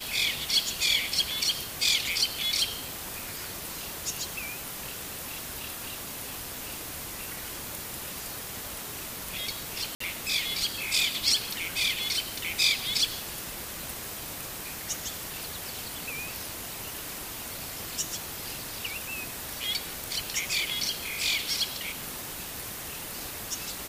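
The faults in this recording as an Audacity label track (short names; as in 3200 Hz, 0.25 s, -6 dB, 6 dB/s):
9.950000	10.000000	gap 54 ms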